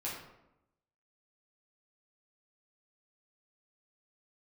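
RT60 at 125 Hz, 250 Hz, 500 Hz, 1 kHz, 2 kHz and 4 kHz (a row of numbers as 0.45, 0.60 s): 1.0, 1.0, 0.90, 0.85, 0.70, 0.50 s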